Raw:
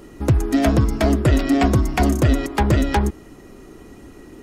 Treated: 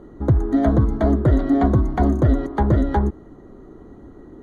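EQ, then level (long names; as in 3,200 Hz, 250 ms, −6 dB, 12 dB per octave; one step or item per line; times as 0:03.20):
moving average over 17 samples
0.0 dB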